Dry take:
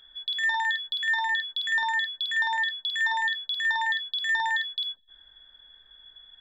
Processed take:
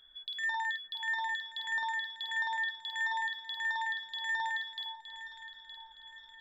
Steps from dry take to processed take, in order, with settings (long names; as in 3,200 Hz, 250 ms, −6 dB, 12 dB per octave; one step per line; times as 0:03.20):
delay that swaps between a low-pass and a high-pass 458 ms, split 1,100 Hz, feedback 65%, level −10 dB
dynamic equaliser 3,200 Hz, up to −4 dB, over −38 dBFS, Q 1.1
level −6.5 dB